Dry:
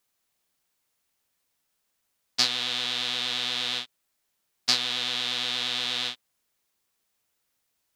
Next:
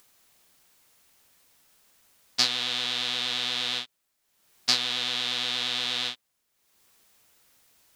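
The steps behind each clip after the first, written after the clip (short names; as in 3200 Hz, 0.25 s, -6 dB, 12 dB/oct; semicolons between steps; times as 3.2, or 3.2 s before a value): upward compressor, threshold -49 dBFS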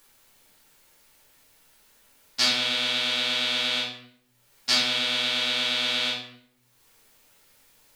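shoebox room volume 130 m³, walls mixed, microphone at 2.3 m; gain -4.5 dB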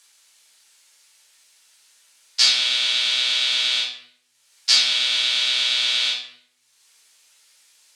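weighting filter ITU-R 468; gain -4 dB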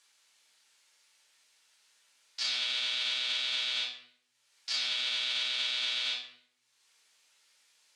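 LPF 4000 Hz 6 dB/oct; limiter -15.5 dBFS, peak gain reduction 10.5 dB; gain -6.5 dB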